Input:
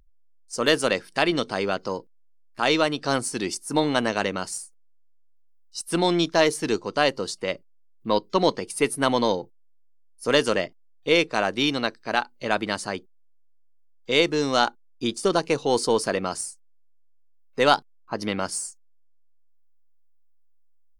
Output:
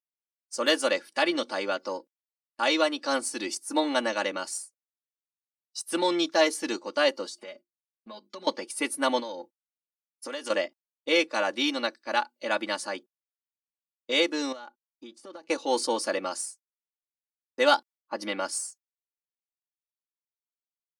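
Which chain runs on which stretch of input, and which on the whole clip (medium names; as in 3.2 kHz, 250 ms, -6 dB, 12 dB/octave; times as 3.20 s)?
7.25–8.47 s: hum notches 50/100/150/200/250/300/350 Hz + comb 4.8 ms, depth 90% + compression 16:1, threshold -33 dBFS
9.19–10.50 s: compression 12:1, threshold -27 dBFS + tape noise reduction on one side only decoder only
14.52–15.49 s: compression 12:1, threshold -34 dBFS + treble shelf 4 kHz -11 dB
whole clip: high-pass 340 Hz 12 dB/octave; expander -42 dBFS; comb 3.5 ms, depth 95%; trim -5 dB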